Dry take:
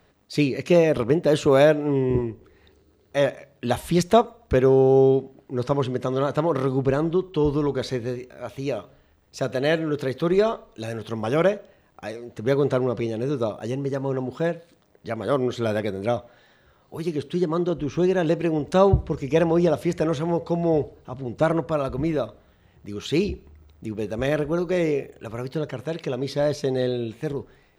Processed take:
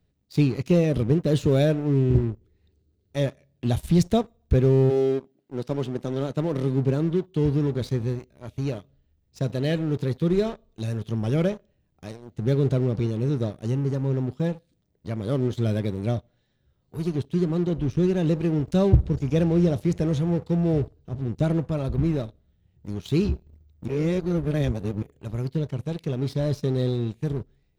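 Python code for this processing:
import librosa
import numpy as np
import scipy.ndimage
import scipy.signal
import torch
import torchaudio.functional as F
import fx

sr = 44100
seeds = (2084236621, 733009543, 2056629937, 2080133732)

y = fx.highpass(x, sr, hz=fx.line((4.89, 340.0), (7.79, 89.0)), slope=12, at=(4.89, 7.79), fade=0.02)
y = fx.edit(y, sr, fx.reverse_span(start_s=23.88, length_s=1.14), tone=tone)
y = fx.curve_eq(y, sr, hz=(120.0, 1100.0, 3700.0), db=(0, -21, -11))
y = fx.leveller(y, sr, passes=2)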